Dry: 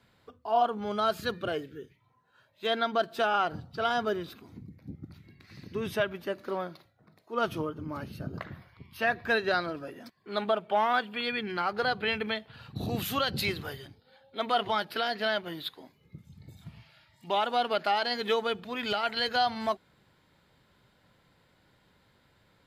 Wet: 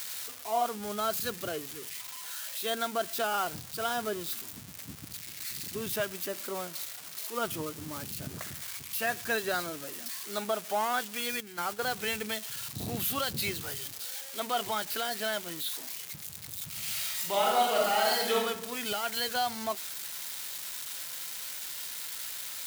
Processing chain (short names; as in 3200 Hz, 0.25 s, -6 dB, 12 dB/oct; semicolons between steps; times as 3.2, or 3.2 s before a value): switching spikes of -23.5 dBFS; 11.4–11.86 gate -31 dBFS, range -9 dB; 16.68–18.37 reverb throw, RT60 0.97 s, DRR -3 dB; gain -4 dB